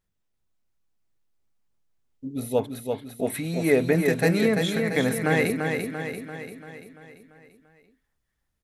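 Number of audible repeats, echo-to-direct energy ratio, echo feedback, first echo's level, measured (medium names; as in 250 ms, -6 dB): 6, -3.5 dB, 55%, -5.0 dB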